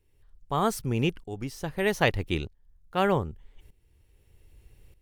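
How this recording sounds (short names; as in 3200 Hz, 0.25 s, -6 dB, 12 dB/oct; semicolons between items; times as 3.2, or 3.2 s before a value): tremolo saw up 0.81 Hz, depth 80%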